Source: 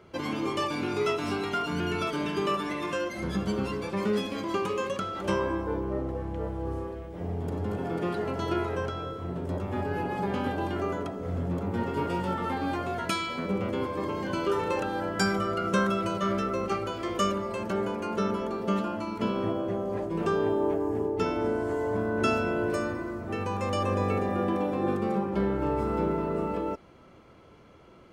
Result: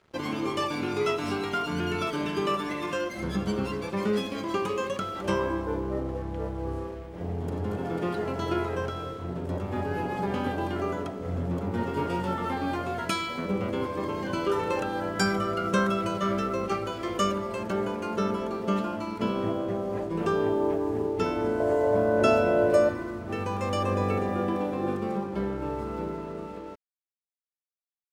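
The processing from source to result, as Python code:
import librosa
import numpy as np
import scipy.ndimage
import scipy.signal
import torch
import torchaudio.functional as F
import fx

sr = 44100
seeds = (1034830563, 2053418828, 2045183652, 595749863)

y = fx.fade_out_tail(x, sr, length_s=4.04)
y = fx.peak_eq(y, sr, hz=590.0, db=13.5, octaves=0.5, at=(21.6, 22.89))
y = np.sign(y) * np.maximum(np.abs(y) - 10.0 ** (-52.5 / 20.0), 0.0)
y = F.gain(torch.from_numpy(y), 1.0).numpy()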